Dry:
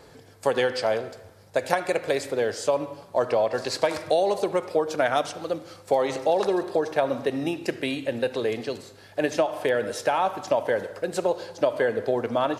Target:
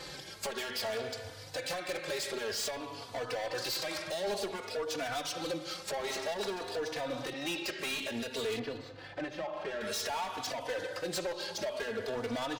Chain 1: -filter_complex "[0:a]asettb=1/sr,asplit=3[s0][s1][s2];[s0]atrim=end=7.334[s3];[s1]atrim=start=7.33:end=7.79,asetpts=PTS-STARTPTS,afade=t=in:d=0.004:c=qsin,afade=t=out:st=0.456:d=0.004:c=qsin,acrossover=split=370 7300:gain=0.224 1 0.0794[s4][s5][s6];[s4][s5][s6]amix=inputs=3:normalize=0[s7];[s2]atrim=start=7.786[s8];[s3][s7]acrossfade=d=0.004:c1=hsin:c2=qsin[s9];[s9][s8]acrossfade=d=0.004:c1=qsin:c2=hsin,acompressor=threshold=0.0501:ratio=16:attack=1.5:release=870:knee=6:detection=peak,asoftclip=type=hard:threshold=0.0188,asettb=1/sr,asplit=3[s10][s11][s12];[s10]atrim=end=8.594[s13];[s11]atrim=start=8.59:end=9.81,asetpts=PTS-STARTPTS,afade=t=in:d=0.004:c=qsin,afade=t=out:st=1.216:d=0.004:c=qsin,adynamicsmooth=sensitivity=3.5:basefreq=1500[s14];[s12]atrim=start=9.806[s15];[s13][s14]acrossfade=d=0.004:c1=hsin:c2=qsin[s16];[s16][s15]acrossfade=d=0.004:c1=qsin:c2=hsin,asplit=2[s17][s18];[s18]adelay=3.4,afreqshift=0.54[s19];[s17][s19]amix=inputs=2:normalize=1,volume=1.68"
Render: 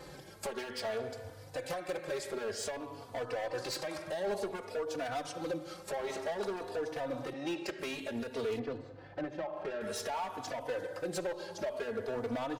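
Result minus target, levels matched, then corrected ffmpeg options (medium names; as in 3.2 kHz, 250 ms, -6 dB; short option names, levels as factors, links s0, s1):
4 kHz band -6.5 dB
-filter_complex "[0:a]asettb=1/sr,asplit=3[s0][s1][s2];[s0]atrim=end=7.334[s3];[s1]atrim=start=7.33:end=7.79,asetpts=PTS-STARTPTS,afade=t=in:d=0.004:c=qsin,afade=t=out:st=0.456:d=0.004:c=qsin,acrossover=split=370 7300:gain=0.224 1 0.0794[s4][s5][s6];[s4][s5][s6]amix=inputs=3:normalize=0[s7];[s2]atrim=start=7.786[s8];[s3][s7]acrossfade=d=0.004:c1=hsin:c2=qsin[s9];[s9][s8]acrossfade=d=0.004:c1=qsin:c2=hsin,acompressor=threshold=0.0501:ratio=16:attack=1.5:release=870:knee=6:detection=peak,equalizer=f=4000:w=0.47:g=13,asoftclip=type=hard:threshold=0.0188,asettb=1/sr,asplit=3[s10][s11][s12];[s10]atrim=end=8.594[s13];[s11]atrim=start=8.59:end=9.81,asetpts=PTS-STARTPTS,afade=t=in:d=0.004:c=qsin,afade=t=out:st=1.216:d=0.004:c=qsin,adynamicsmooth=sensitivity=3.5:basefreq=1500[s14];[s12]atrim=start=9.806[s15];[s13][s14]acrossfade=d=0.004:c1=hsin:c2=qsin[s16];[s16][s15]acrossfade=d=0.004:c1=qsin:c2=hsin,asplit=2[s17][s18];[s18]adelay=3.4,afreqshift=0.54[s19];[s17][s19]amix=inputs=2:normalize=1,volume=1.68"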